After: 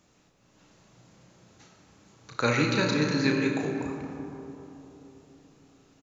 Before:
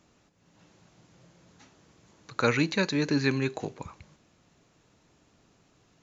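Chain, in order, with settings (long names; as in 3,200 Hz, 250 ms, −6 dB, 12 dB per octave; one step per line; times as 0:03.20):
high-shelf EQ 5,600 Hz +4.5 dB
double-tracking delay 33 ms −5.5 dB
comb and all-pass reverb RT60 3.7 s, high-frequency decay 0.3×, pre-delay 20 ms, DRR 2.5 dB
level −1.5 dB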